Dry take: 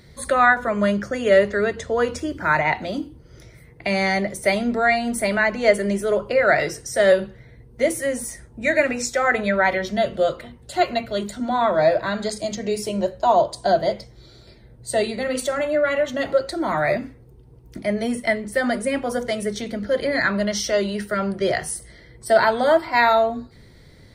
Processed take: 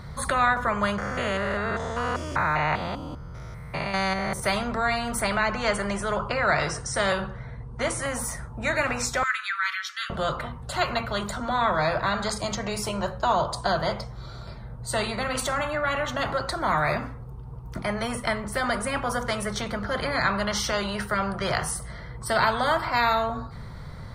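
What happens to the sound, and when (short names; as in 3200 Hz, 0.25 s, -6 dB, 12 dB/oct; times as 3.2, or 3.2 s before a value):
0.98–4.4 stepped spectrum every 0.2 s
5.21–8.06 steep low-pass 10000 Hz 72 dB/oct
9.23–10.1 steep high-pass 1300 Hz 72 dB/oct
whole clip: EQ curve 150 Hz 0 dB, 320 Hz -19 dB, 1200 Hz +3 dB, 1900 Hz -13 dB, 6700 Hz -16 dB; spectral compressor 2:1; gain -1.5 dB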